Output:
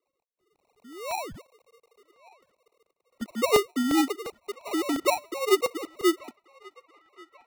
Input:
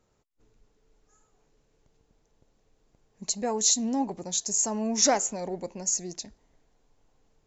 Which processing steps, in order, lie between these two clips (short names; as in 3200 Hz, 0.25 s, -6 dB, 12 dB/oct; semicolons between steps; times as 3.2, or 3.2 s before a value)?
sine-wave speech; dynamic EQ 440 Hz, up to +3 dB, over -32 dBFS, Q 2.4; in parallel at 0 dB: compressor, threshold -30 dBFS, peak gain reduction 15 dB; on the sum: painted sound rise, 0.84–1.42, 220–2300 Hz -37 dBFS; AGC gain up to 13 dB; band-pass sweep 930 Hz -> 350 Hz, 0.85–2.21; sample-and-hold 27×; on a send: narrowing echo 1.135 s, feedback 51%, band-pass 1500 Hz, level -20.5 dB; on the sum: crackling interface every 0.35 s, samples 64, repeat, from 0.41; gain -4 dB